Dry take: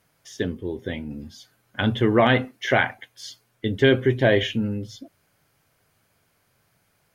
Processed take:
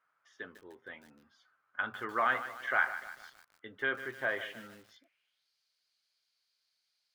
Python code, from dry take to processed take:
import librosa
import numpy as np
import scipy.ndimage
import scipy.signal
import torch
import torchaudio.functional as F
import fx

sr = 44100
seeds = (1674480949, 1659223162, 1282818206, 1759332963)

y = fx.filter_sweep_bandpass(x, sr, from_hz=1300.0, to_hz=4400.0, start_s=4.72, end_s=5.49, q=4.4)
y = fx.echo_crushed(y, sr, ms=150, feedback_pct=55, bits=8, wet_db=-12.0)